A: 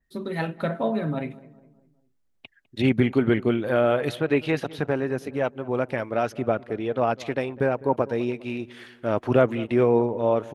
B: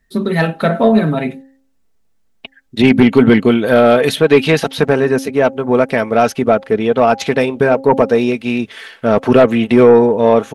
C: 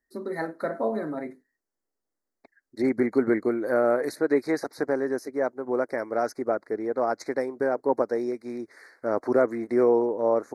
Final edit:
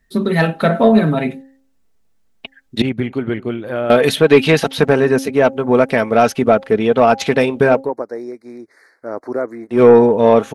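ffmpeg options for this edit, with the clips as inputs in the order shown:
-filter_complex "[1:a]asplit=3[a][b][c];[a]atrim=end=2.822[d];[0:a]atrim=start=2.818:end=3.902[e];[b]atrim=start=3.898:end=7.91[f];[2:a]atrim=start=7.75:end=9.86[g];[c]atrim=start=9.7[h];[d][e]acrossfade=d=0.004:c1=hsin:c2=hsin[i];[i][f]acrossfade=d=0.004:c1=hsin:c2=hsin[j];[j][g]acrossfade=d=0.16:c1=tri:c2=tri[k];[k][h]acrossfade=d=0.16:c1=tri:c2=tri"

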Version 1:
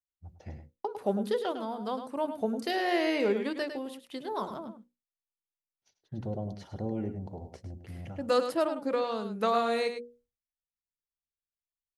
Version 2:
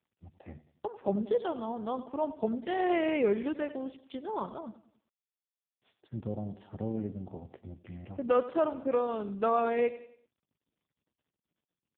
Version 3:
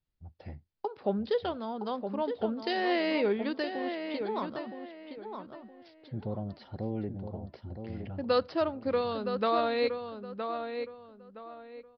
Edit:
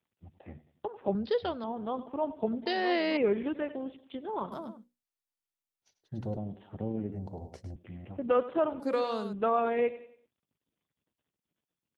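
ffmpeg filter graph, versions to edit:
-filter_complex "[2:a]asplit=2[a][b];[0:a]asplit=3[c][d][e];[1:a]asplit=6[f][g][h][i][j][k];[f]atrim=end=1.152[l];[a]atrim=start=1.148:end=1.642[m];[g]atrim=start=1.638:end=2.662[n];[b]atrim=start=2.658:end=3.172[o];[h]atrim=start=3.168:end=4.522[p];[c]atrim=start=4.518:end=6.372[q];[i]atrim=start=6.368:end=7.122[r];[d]atrim=start=7.118:end=7.762[s];[j]atrim=start=7.758:end=8.802[t];[e]atrim=start=8.798:end=9.332[u];[k]atrim=start=9.328[v];[l][m]acrossfade=d=0.004:c1=hsin:c2=hsin[w];[w][n]acrossfade=d=0.004:c1=hsin:c2=hsin[x];[x][o]acrossfade=d=0.004:c1=hsin:c2=hsin[y];[y][p]acrossfade=d=0.004:c1=hsin:c2=hsin[z];[z][q]acrossfade=d=0.004:c1=hsin:c2=hsin[aa];[aa][r]acrossfade=d=0.004:c1=hsin:c2=hsin[ab];[ab][s]acrossfade=d=0.004:c1=hsin:c2=hsin[ac];[ac][t]acrossfade=d=0.004:c1=hsin:c2=hsin[ad];[ad][u]acrossfade=d=0.004:c1=hsin:c2=hsin[ae];[ae][v]acrossfade=d=0.004:c1=hsin:c2=hsin"

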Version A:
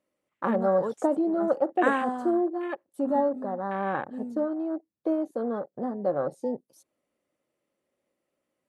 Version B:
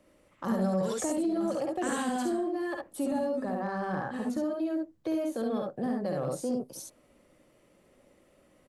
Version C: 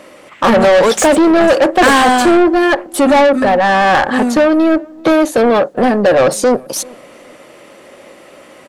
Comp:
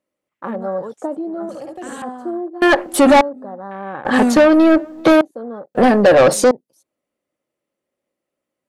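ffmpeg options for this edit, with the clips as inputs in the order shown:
-filter_complex "[2:a]asplit=3[a][b][c];[0:a]asplit=5[d][e][f][g][h];[d]atrim=end=1.492[i];[1:a]atrim=start=1.488:end=2.022[j];[e]atrim=start=2.018:end=2.622[k];[a]atrim=start=2.618:end=3.212[l];[f]atrim=start=3.208:end=4.052[m];[b]atrim=start=4.048:end=5.212[n];[g]atrim=start=5.208:end=5.752[o];[c]atrim=start=5.748:end=6.512[p];[h]atrim=start=6.508[q];[i][j]acrossfade=d=0.004:c1=hsin:c2=hsin[r];[r][k]acrossfade=d=0.004:c1=hsin:c2=hsin[s];[s][l]acrossfade=d=0.004:c1=hsin:c2=hsin[t];[t][m]acrossfade=d=0.004:c1=hsin:c2=hsin[u];[u][n]acrossfade=d=0.004:c1=hsin:c2=hsin[v];[v][o]acrossfade=d=0.004:c1=hsin:c2=hsin[w];[w][p]acrossfade=d=0.004:c1=hsin:c2=hsin[x];[x][q]acrossfade=d=0.004:c1=hsin:c2=hsin"

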